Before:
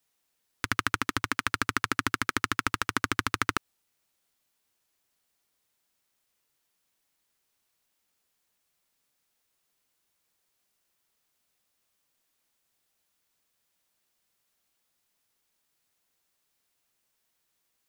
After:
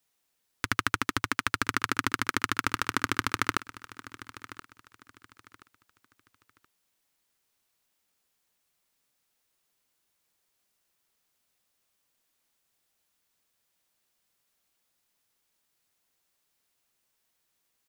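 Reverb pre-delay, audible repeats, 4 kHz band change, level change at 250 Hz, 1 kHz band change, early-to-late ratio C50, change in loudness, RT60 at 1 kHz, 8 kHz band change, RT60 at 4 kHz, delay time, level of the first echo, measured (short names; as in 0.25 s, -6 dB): none, 2, 0.0 dB, 0.0 dB, 0.0 dB, none, 0.0 dB, none, 0.0 dB, none, 1.026 s, -17.0 dB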